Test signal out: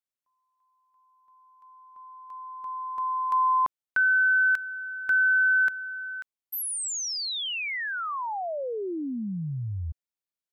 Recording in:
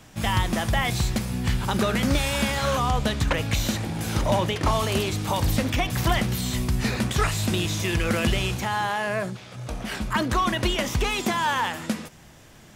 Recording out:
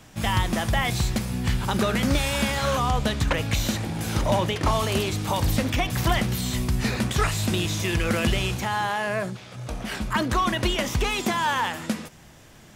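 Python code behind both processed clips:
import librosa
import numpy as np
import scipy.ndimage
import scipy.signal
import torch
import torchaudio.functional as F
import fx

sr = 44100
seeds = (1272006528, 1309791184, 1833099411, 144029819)

y = fx.quant_float(x, sr, bits=8)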